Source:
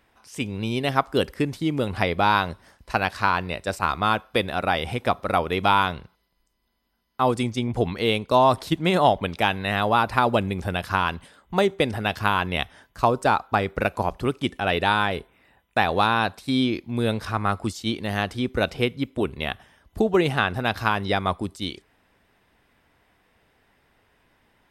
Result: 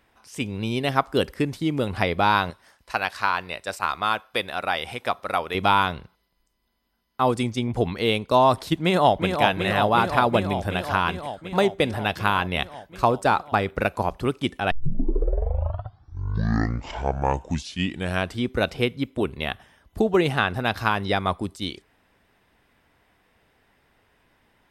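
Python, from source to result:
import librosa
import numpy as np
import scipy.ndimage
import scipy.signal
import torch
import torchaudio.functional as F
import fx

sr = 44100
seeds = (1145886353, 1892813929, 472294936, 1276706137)

y = fx.low_shelf(x, sr, hz=410.0, db=-12.0, at=(2.5, 5.55))
y = fx.echo_throw(y, sr, start_s=8.82, length_s=0.59, ms=370, feedback_pct=80, wet_db=-5.5)
y = fx.edit(y, sr, fx.tape_start(start_s=14.71, length_s=3.81), tone=tone)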